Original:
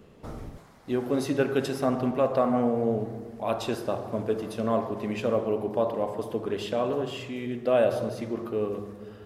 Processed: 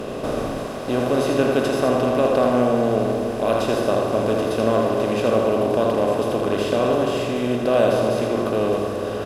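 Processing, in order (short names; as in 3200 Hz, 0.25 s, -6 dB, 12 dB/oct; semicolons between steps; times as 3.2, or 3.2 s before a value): per-bin compression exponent 0.4; echo 81 ms -5.5 dB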